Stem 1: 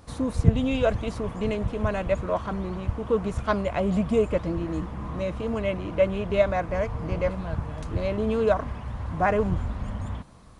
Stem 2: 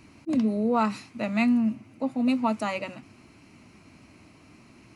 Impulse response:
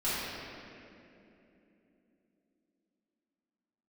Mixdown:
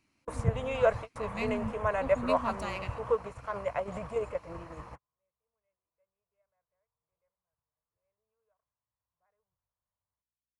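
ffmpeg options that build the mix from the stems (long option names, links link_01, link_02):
-filter_complex "[0:a]equalizer=frequency=125:width_type=o:width=1:gain=8,equalizer=frequency=250:width_type=o:width=1:gain=-12,equalizer=frequency=500:width_type=o:width=1:gain=11,equalizer=frequency=1000:width_type=o:width=1:gain=9,equalizer=frequency=2000:width_type=o:width=1:gain=6,equalizer=frequency=4000:width_type=o:width=1:gain=-9,equalizer=frequency=8000:width_type=o:width=1:gain=3,aeval=exprs='val(0)+0.0178*(sin(2*PI*60*n/s)+sin(2*PI*2*60*n/s)/2+sin(2*PI*3*60*n/s)/3+sin(2*PI*4*60*n/s)/4+sin(2*PI*5*60*n/s)/5)':channel_layout=same,volume=-9.5dB[link_01];[1:a]aeval=exprs='if(lt(val(0),0),0.708*val(0),val(0))':channel_layout=same,volume=-7.5dB,afade=type=in:start_time=1.06:duration=0.58:silence=0.251189,asplit=2[link_02][link_03];[link_03]apad=whole_len=467361[link_04];[link_01][link_04]sidechaingate=range=-56dB:threshold=-60dB:ratio=16:detection=peak[link_05];[link_05][link_02]amix=inputs=2:normalize=0,tiltshelf=frequency=970:gain=-4"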